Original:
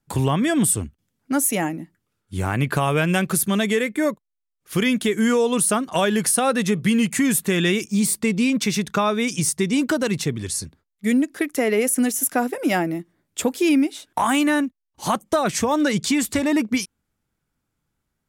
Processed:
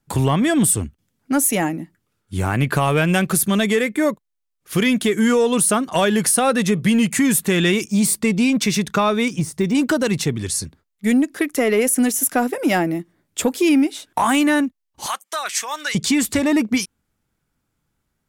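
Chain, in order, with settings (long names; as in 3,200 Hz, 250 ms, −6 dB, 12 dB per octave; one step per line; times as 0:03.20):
0:09.28–0:09.75: de-essing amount 95%
0:15.06–0:15.95: high-pass filter 1,400 Hz 12 dB per octave
in parallel at −5.5 dB: soft clipping −18.5 dBFS, distortion −13 dB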